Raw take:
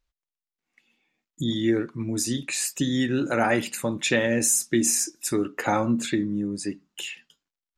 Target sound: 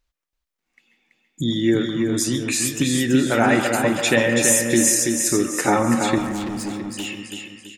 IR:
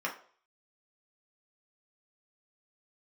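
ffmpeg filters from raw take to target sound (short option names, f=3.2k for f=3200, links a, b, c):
-filter_complex "[0:a]asplit=2[a][b];[b]aecho=0:1:331|662|993|1324|1655:0.562|0.236|0.0992|0.0417|0.0175[c];[a][c]amix=inputs=2:normalize=0,asettb=1/sr,asplit=3[d][e][f];[d]atrim=end=6.184[g];[e]atrim=start=6.18:end=7.06,asetpts=PTS-STARTPTS,afade=t=in:d=0.004:c=qsin,afade=t=out:st=0.876:d=0.004:c=qsin,volume=29dB,asoftclip=hard,volume=-29dB[h];[f]atrim=start=7.056[i];[g][h]acrossfade=d=0.004:c1=hsin:c2=qsin[j];[j][i]acrossfade=d=0.004:c1=qsin:c2=hsin,asplit=2[k][l];[1:a]atrim=start_sample=2205,adelay=136[m];[l][m]afir=irnorm=-1:irlink=0,volume=-13.5dB[n];[k][n]amix=inputs=2:normalize=0,volume=4dB"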